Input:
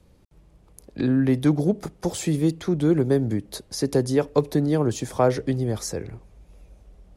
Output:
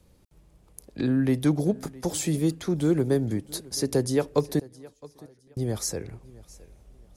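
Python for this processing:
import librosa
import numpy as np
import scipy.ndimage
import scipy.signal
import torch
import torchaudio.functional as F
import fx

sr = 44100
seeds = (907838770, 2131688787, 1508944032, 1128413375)

y = fx.high_shelf(x, sr, hz=5500.0, db=8.0)
y = fx.gate_flip(y, sr, shuts_db=-20.0, range_db=-35, at=(4.59, 5.57))
y = fx.echo_feedback(y, sr, ms=665, feedback_pct=27, wet_db=-21.5)
y = y * 10.0 ** (-3.0 / 20.0)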